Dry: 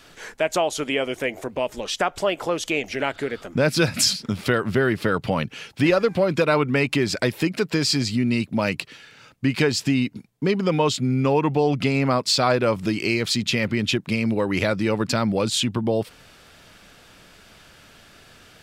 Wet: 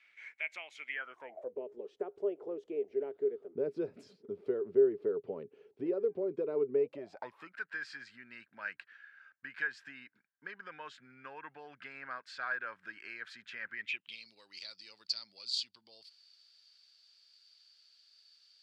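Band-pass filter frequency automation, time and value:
band-pass filter, Q 13
0.86 s 2.2 kHz
1.58 s 410 Hz
6.77 s 410 Hz
7.59 s 1.6 kHz
13.72 s 1.6 kHz
14.29 s 4.6 kHz

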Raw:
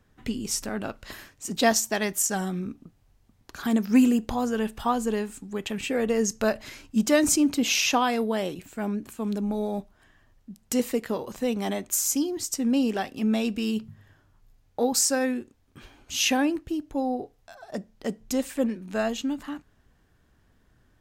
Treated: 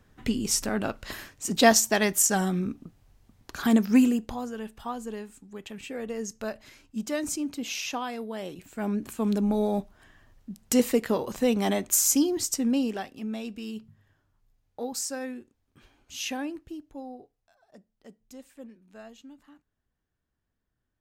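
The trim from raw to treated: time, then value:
3.74 s +3 dB
4.55 s -9.5 dB
8.30 s -9.5 dB
9.07 s +3 dB
12.40 s +3 dB
13.28 s -9.5 dB
16.71 s -9.5 dB
17.64 s -19.5 dB

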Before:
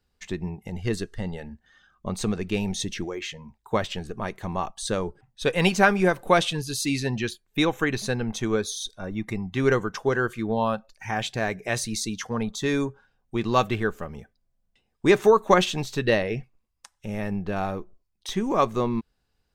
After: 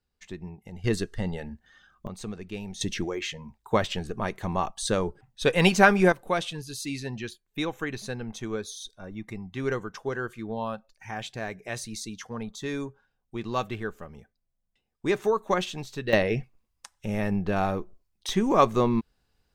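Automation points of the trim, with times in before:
-8 dB
from 0.84 s +1 dB
from 2.07 s -10 dB
from 2.81 s +1 dB
from 6.12 s -7.5 dB
from 16.13 s +2 dB

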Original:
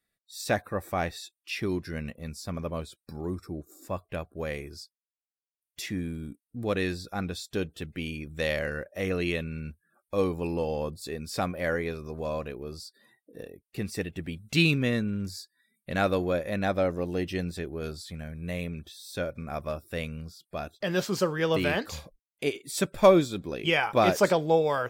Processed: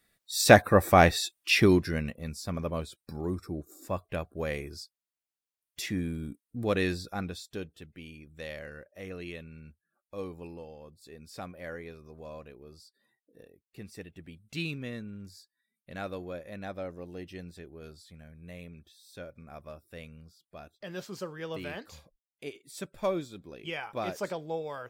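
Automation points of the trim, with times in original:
1.60 s +10.5 dB
2.14 s +0.5 dB
6.97 s +0.5 dB
7.91 s -12 dB
10.42 s -12 dB
10.79 s -18.5 dB
11.23 s -12 dB

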